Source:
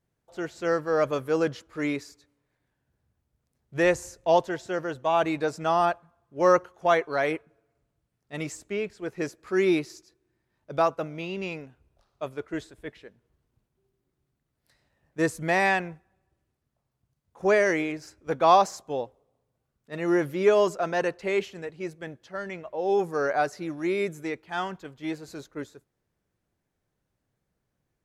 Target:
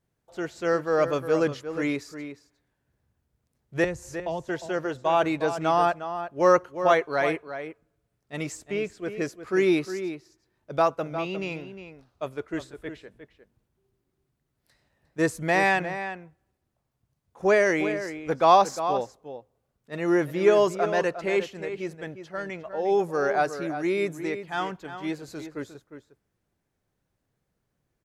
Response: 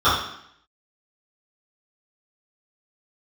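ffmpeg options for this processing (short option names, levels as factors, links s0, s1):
-filter_complex "[0:a]asettb=1/sr,asplit=3[s0][s1][s2];[s0]atrim=end=3.844[s3];[s1]atrim=start=3.84:end=4.49,asetpts=PTS-STARTPTS,afade=t=in:d=0.004:c=qsin,afade=t=out:st=0.646:d=0.004:c=qsin,acrossover=split=220[s4][s5];[s5]acompressor=threshold=0.0316:ratio=10[s6];[s4][s6]amix=inputs=2:normalize=0[s7];[s2]atrim=start=4.486[s8];[s3][s7]acrossfade=d=0.004:c1=hsin:c2=qsin[s9];[s9][s8]acrossfade=d=0.004:c1=qsin:c2=hsin,asettb=1/sr,asplit=3[s10][s11][s12];[s10]atrim=end=8.794[s13];[s11]atrim=start=8.79:end=9.38,asetpts=PTS-STARTPTS,afade=t=in:d=0.004:c=qsin,afade=t=out:st=0.586:d=0.004:c=qsin,asuperstop=centerf=890:order=4:qfactor=7.5[s14];[s12]atrim=start=9.376[s15];[s13][s14]acrossfade=d=0.004:c1=hsin:c2=qsin[s16];[s16][s15]acrossfade=d=0.004:c1=qsin:c2=hsin,asplit=2[s17][s18];[s18]adelay=355.7,volume=0.316,highshelf=f=4000:g=-8[s19];[s17][s19]amix=inputs=2:normalize=0,volume=1.12"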